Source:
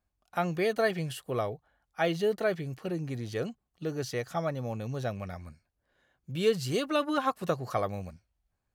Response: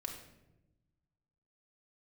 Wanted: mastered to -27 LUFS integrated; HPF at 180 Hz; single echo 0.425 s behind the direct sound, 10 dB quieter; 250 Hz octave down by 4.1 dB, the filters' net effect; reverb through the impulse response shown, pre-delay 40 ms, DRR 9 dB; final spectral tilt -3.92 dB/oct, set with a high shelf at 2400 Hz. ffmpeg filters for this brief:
-filter_complex "[0:a]highpass=180,equalizer=f=250:t=o:g=-4,highshelf=f=2.4k:g=-3,aecho=1:1:425:0.316,asplit=2[a][b];[1:a]atrim=start_sample=2205,adelay=40[c];[b][c]afir=irnorm=-1:irlink=0,volume=-8dB[d];[a][d]amix=inputs=2:normalize=0,volume=6dB"

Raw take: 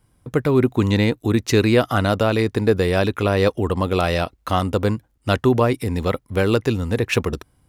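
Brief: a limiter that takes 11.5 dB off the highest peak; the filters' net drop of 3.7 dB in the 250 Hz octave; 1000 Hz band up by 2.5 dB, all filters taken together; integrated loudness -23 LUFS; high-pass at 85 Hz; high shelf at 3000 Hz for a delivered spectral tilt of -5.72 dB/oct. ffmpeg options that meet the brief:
-af "highpass=85,equalizer=f=250:t=o:g=-5,equalizer=f=1k:t=o:g=4.5,highshelf=f=3k:g=-5.5,volume=3.5dB,alimiter=limit=-10.5dB:level=0:latency=1"

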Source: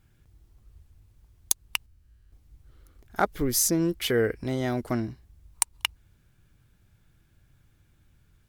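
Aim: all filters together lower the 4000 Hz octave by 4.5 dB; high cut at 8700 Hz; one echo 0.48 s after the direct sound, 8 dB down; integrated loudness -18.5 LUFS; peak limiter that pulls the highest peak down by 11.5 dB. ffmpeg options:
-af "lowpass=8.7k,equalizer=f=4k:t=o:g=-7,alimiter=limit=-19dB:level=0:latency=1,aecho=1:1:480:0.398,volume=13dB"

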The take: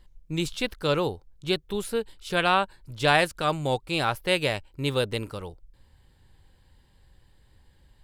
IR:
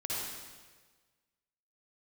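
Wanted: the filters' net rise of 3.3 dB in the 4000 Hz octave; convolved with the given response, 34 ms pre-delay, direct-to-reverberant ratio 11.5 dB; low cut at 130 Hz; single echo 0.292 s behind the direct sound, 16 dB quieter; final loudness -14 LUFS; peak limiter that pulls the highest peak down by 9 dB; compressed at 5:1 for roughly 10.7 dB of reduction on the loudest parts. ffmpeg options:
-filter_complex "[0:a]highpass=130,equalizer=f=4k:t=o:g=4,acompressor=threshold=-27dB:ratio=5,alimiter=limit=-24dB:level=0:latency=1,aecho=1:1:292:0.158,asplit=2[a][b];[1:a]atrim=start_sample=2205,adelay=34[c];[b][c]afir=irnorm=-1:irlink=0,volume=-16dB[d];[a][d]amix=inputs=2:normalize=0,volume=22.5dB"

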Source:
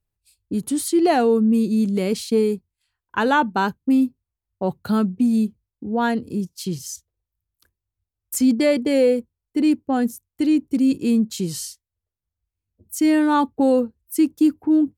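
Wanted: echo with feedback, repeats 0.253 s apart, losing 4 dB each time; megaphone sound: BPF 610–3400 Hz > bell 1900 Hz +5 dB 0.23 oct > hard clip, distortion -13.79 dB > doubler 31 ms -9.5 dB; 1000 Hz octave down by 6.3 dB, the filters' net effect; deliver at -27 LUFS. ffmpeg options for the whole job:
-filter_complex "[0:a]highpass=610,lowpass=3.4k,equalizer=f=1k:t=o:g=-7,equalizer=f=1.9k:t=o:w=0.23:g=5,aecho=1:1:253|506|759|1012|1265|1518|1771|2024|2277:0.631|0.398|0.25|0.158|0.0994|0.0626|0.0394|0.0249|0.0157,asoftclip=type=hard:threshold=-21.5dB,asplit=2[a][b];[b]adelay=31,volume=-9.5dB[c];[a][c]amix=inputs=2:normalize=0,volume=2dB"

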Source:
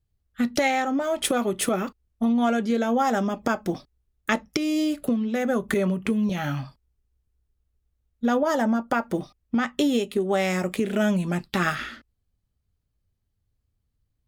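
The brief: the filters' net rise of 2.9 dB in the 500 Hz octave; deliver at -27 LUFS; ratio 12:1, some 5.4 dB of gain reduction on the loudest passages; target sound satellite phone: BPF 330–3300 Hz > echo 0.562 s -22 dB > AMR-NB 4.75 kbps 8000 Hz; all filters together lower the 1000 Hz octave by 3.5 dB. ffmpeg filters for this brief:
-af "equalizer=f=500:t=o:g=7,equalizer=f=1k:t=o:g=-8.5,acompressor=threshold=-21dB:ratio=12,highpass=330,lowpass=3.3k,aecho=1:1:562:0.0794,volume=4dB" -ar 8000 -c:a libopencore_amrnb -b:a 4750

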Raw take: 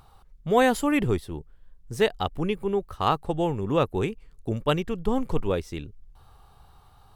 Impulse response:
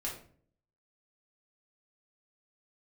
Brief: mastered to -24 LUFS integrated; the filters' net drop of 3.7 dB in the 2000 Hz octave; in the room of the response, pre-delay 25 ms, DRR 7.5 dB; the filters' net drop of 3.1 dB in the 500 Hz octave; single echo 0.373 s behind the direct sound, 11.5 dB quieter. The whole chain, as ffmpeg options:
-filter_complex "[0:a]equalizer=f=500:t=o:g=-3.5,equalizer=f=2k:t=o:g=-4.5,aecho=1:1:373:0.266,asplit=2[a][b];[1:a]atrim=start_sample=2205,adelay=25[c];[b][c]afir=irnorm=-1:irlink=0,volume=-9dB[d];[a][d]amix=inputs=2:normalize=0,volume=3.5dB"

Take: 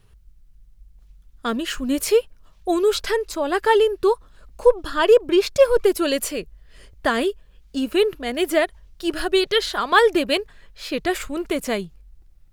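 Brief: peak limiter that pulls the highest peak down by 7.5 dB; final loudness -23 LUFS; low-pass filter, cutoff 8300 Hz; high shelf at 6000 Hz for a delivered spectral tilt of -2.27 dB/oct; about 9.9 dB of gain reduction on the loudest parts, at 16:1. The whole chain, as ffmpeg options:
-af "lowpass=8.3k,highshelf=f=6k:g=-8,acompressor=threshold=-18dB:ratio=16,volume=4.5dB,alimiter=limit=-12.5dB:level=0:latency=1"

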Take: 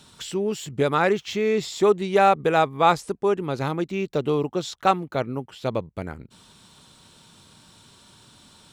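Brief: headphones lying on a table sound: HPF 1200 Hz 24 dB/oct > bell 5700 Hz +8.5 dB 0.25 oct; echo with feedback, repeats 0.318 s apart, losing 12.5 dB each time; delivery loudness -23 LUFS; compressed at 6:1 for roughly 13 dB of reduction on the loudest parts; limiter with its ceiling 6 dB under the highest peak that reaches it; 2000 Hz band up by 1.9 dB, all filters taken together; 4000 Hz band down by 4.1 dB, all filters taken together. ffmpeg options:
-af "equalizer=f=2k:t=o:g=5,equalizer=f=4k:t=o:g=-8,acompressor=threshold=-27dB:ratio=6,alimiter=limit=-22.5dB:level=0:latency=1,highpass=f=1.2k:w=0.5412,highpass=f=1.2k:w=1.3066,equalizer=f=5.7k:t=o:w=0.25:g=8.5,aecho=1:1:318|636|954:0.237|0.0569|0.0137,volume=18dB"

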